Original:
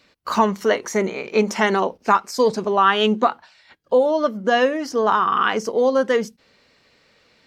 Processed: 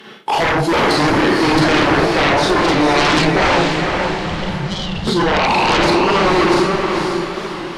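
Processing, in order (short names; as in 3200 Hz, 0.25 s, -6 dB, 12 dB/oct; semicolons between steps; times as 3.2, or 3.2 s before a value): delay-line pitch shifter -4.5 st; HPF 150 Hz 24 dB/oct; bell 420 Hz +4 dB 0.75 oct; Schroeder reverb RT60 0.47 s, combs from 28 ms, DRR -3 dB; reverse; compressor 4:1, threshold -24 dBFS, peak gain reduction 17.5 dB; reverse; sine folder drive 14 dB, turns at -12 dBFS; spectral gain 3.83–4.87, 220–2900 Hz -26 dB; on a send: diffused feedback echo 0.471 s, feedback 47%, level -3.5 dB; on the sum: speed mistake 25 fps video run at 24 fps; record warp 45 rpm, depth 100 cents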